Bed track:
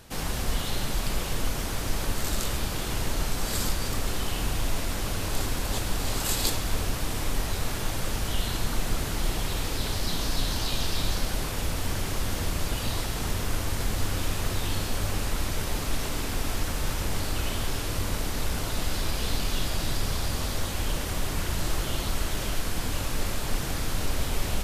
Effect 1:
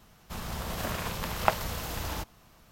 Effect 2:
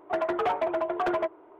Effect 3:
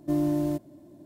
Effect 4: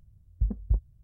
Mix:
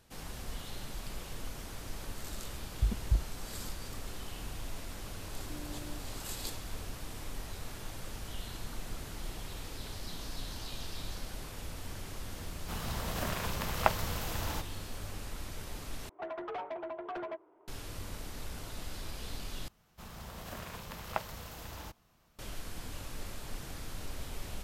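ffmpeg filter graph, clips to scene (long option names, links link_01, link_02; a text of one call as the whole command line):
ffmpeg -i bed.wav -i cue0.wav -i cue1.wav -i cue2.wav -i cue3.wav -filter_complex "[1:a]asplit=2[link_01][link_02];[0:a]volume=-13.5dB[link_03];[3:a]alimiter=level_in=2.5dB:limit=-24dB:level=0:latency=1:release=71,volume=-2.5dB[link_04];[2:a]asoftclip=type=tanh:threshold=-22dB[link_05];[link_03]asplit=3[link_06][link_07][link_08];[link_06]atrim=end=16.094[link_09];[link_05]atrim=end=1.59,asetpts=PTS-STARTPTS,volume=-11dB[link_10];[link_07]atrim=start=17.676:end=19.684[link_11];[link_02]atrim=end=2.71,asetpts=PTS-STARTPTS,volume=-10.5dB[link_12];[link_08]atrim=start=22.386[link_13];[4:a]atrim=end=1.03,asetpts=PTS-STARTPTS,volume=-3dB,afade=type=in:duration=0.004:curve=hsin,afade=type=out:start_time=1.026:duration=0.004:curve=hsin,adelay=2410[link_14];[link_04]atrim=end=1.05,asetpts=PTS-STARTPTS,volume=-14dB,afade=type=in:duration=0.004:curve=hsin,afade=type=out:start_time=1.046:duration=0.004:curve=hsin,adelay=5420[link_15];[link_01]atrim=end=2.71,asetpts=PTS-STARTPTS,volume=-2.5dB,afade=type=in:duration=0.004:curve=hsin,afade=type=out:start_time=2.706:duration=0.004:curve=hsin,adelay=12380[link_16];[link_09][link_10]acrossfade=duration=0.004:curve1=hsin:curve2=hsin[link_17];[link_17][link_11]acrossfade=duration=0.004:curve1=hsin:curve2=hsin[link_18];[link_18][link_12]acrossfade=duration=0.004:curve1=hsin:curve2=hsin[link_19];[link_19][link_13]acrossfade=duration=0.004:curve1=hsin:curve2=hsin[link_20];[link_20][link_14][link_15][link_16]amix=inputs=4:normalize=0" out.wav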